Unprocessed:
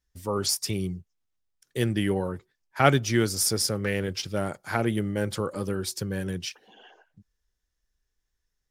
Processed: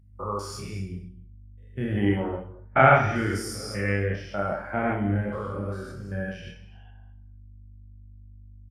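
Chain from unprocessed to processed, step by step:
spectrum averaged block by block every 200 ms
flat-topped bell 1,300 Hz +9 dB 2.5 octaves
mains hum 50 Hz, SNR 16 dB
reverse bouncing-ball delay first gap 30 ms, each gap 1.1×, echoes 5
reverb whose tail is shaped and stops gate 310 ms flat, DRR 9 dB
every bin expanded away from the loudest bin 1.5 to 1
level −1 dB

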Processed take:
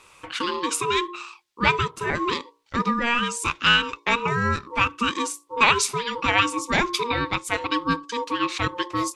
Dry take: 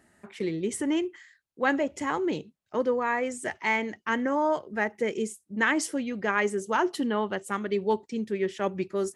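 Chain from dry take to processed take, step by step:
mains-hum notches 60/120/180/240/300/360/420 Hz
gain on a spectral selection 0:01.90–0:02.15, 1,600–8,700 Hz −12 dB
meter weighting curve D
ring modulation 710 Hz
in parallel at +1.5 dB: downward compressor, threshold −38 dBFS, peak gain reduction 20 dB
on the sum: level +3.5 dB

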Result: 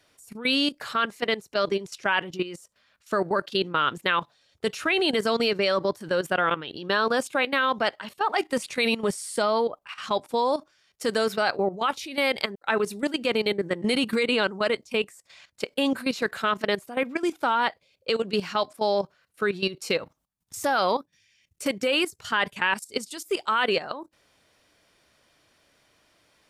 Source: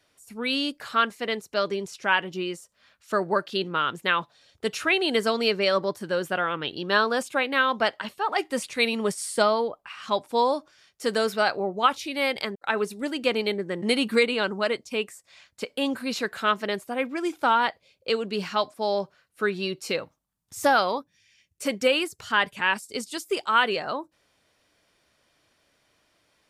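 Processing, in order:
output level in coarse steps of 14 dB
level +5.5 dB

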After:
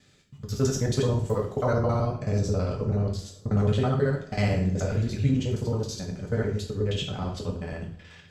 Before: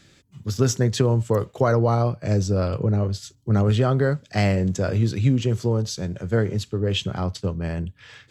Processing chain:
reversed piece by piece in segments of 54 ms
coupled-rooms reverb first 0.44 s, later 2.1 s, from −21 dB, DRR −1 dB
level −8 dB

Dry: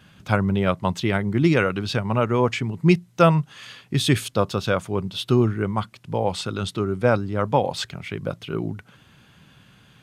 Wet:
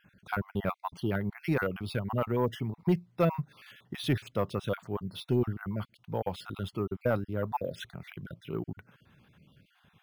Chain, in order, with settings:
time-frequency cells dropped at random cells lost 33%
bad sample-rate conversion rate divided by 3×, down filtered, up hold
high-shelf EQ 4,000 Hz −11 dB
soft clipping −9.5 dBFS, distortion −18 dB
level −7 dB

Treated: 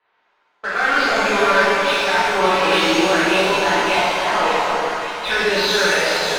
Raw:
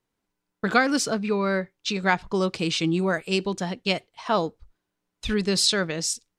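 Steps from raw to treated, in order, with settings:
Butterworth low-pass 4,800 Hz 72 dB per octave
three-way crossover with the lows and the highs turned down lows −18 dB, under 520 Hz, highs −21 dB, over 3,200 Hz
reversed playback
downward compressor, threshold −34 dBFS, peak gain reduction 17.5 dB
reversed playback
leveller curve on the samples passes 1
brickwall limiter −28 dBFS, peak gain reduction 7.5 dB
mid-hump overdrive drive 16 dB, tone 3,300 Hz, clips at −27.5 dBFS
delay that swaps between a low-pass and a high-pass 286 ms, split 1,200 Hz, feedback 66%, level −2.5 dB
reverb with rising layers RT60 1.6 s, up +7 semitones, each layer −8 dB, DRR −10 dB
level +6.5 dB

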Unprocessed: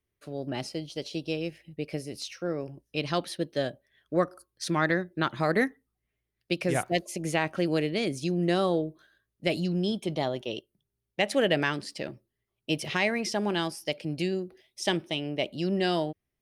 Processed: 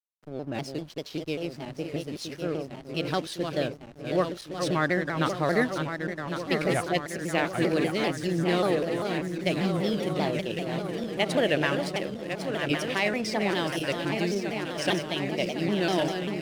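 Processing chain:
feedback delay that plays each chunk backwards 552 ms, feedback 81%, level −6 dB
slack as between gear wheels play −39.5 dBFS
pitch modulation by a square or saw wave saw down 5.1 Hz, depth 160 cents

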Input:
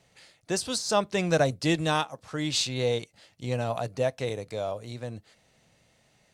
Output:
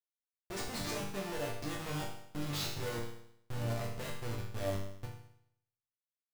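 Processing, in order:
comparator with hysteresis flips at −28.5 dBFS
resonators tuned to a chord G2 minor, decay 0.7 s
level +10.5 dB

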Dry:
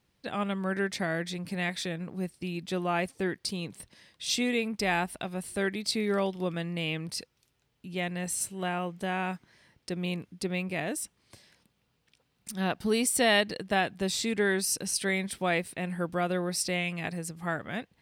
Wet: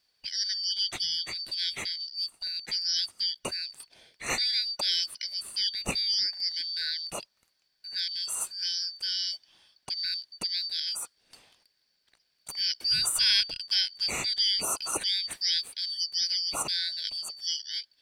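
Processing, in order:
band-splitting scrambler in four parts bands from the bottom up 4321

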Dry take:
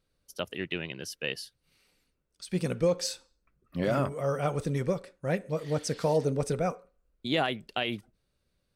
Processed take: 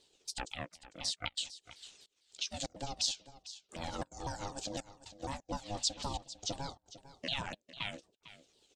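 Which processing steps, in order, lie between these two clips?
pitch shifter swept by a sawtooth −8.5 semitones, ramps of 251 ms
flat-topped bell 5,100 Hz +15.5 dB
downward compressor 2 to 1, threshold −51 dBFS, peak gain reduction 19 dB
gate pattern "xxxxxxxx...xxxx." 175 BPM −24 dB
ring modulation 410 Hz
harmonic and percussive parts rebalanced harmonic −8 dB
on a send: single-tap delay 451 ms −15.5 dB
on the sum: level +8.5 dB

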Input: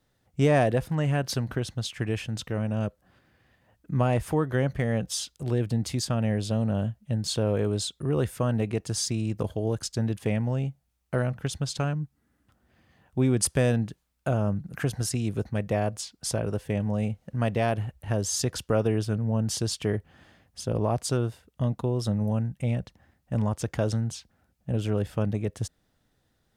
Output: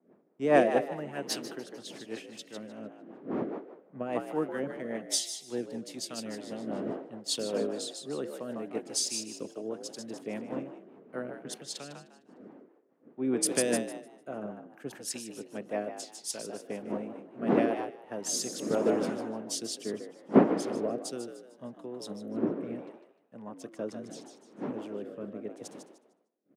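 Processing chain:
wind on the microphone 300 Hz −32 dBFS
high-pass filter 220 Hz 24 dB per octave
echo with shifted repeats 152 ms, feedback 51%, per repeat +60 Hz, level −6 dB
rotating-speaker cabinet horn 5 Hz, later 0.75 Hz, at 0:17.47
multiband upward and downward expander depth 100%
level −5.5 dB

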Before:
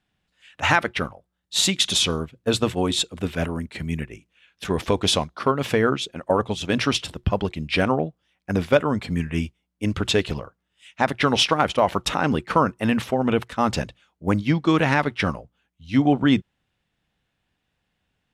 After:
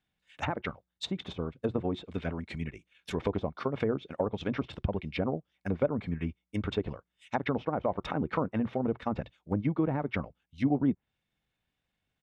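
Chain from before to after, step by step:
treble cut that deepens with the level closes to 730 Hz, closed at −17 dBFS
hollow resonant body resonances 2,200/3,600 Hz, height 9 dB, ringing for 50 ms
tempo change 1.5×
level −8 dB

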